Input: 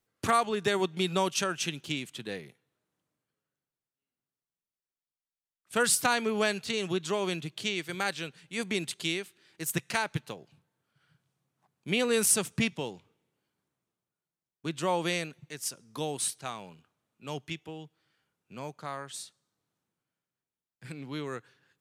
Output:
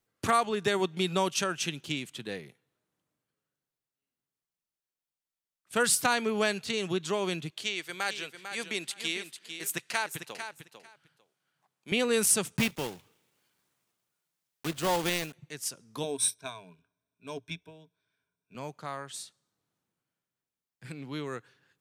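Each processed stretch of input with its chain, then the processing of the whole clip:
7.5–11.92 HPF 580 Hz 6 dB/oct + feedback echo 0.448 s, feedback 16%, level -9 dB
12.57–15.35 block floating point 3-bit + mismatched tape noise reduction encoder only
16.03–18.55 ripple EQ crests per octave 1.6, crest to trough 15 dB + upward expander, over -42 dBFS
whole clip: dry

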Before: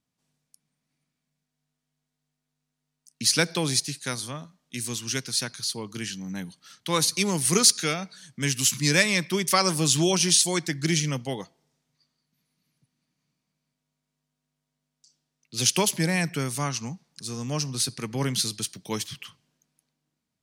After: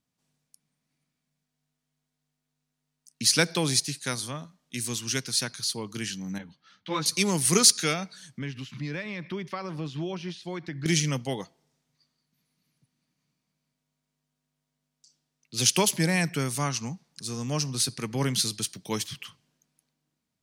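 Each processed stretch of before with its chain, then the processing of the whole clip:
6.38–7.06 air absorption 210 m + notch 410 Hz, Q 6.2 + ensemble effect
8.39–10.86 compressor 3:1, threshold -30 dBFS + air absorption 330 m
whole clip: dry

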